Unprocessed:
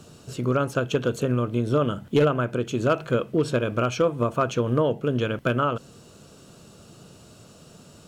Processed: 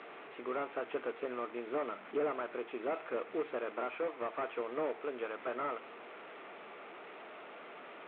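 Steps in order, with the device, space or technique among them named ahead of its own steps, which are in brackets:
0:03.94–0:05.36: parametric band 170 Hz −6.5 dB 0.85 octaves
digital answering machine (band-pass filter 350–3,000 Hz; linear delta modulator 16 kbit/s, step −35 dBFS; loudspeaker in its box 460–3,800 Hz, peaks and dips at 540 Hz −6 dB, 1,000 Hz −3 dB, 1,600 Hz −5 dB, 2,900 Hz −7 dB)
level −4 dB

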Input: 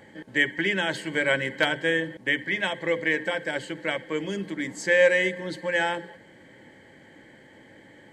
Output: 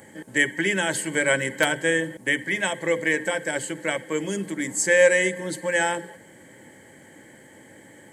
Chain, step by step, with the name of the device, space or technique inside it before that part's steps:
budget condenser microphone (high-pass filter 61 Hz; high shelf with overshoot 6,100 Hz +13 dB, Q 1.5)
level +2.5 dB

